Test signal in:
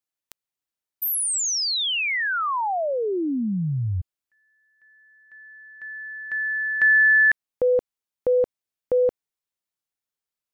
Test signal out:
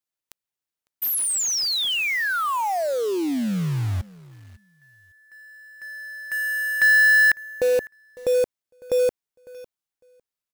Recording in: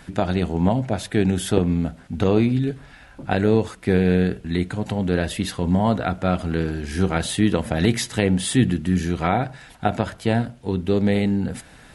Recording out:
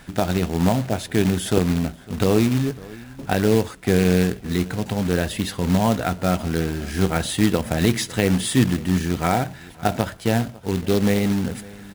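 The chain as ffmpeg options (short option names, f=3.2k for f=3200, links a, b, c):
-filter_complex "[0:a]asplit=2[a][b];[b]adelay=553,lowpass=f=3.4k:p=1,volume=-21dB,asplit=2[c][d];[d]adelay=553,lowpass=f=3.4k:p=1,volume=0.16[e];[a][c][e]amix=inputs=3:normalize=0,acrusher=bits=3:mode=log:mix=0:aa=0.000001"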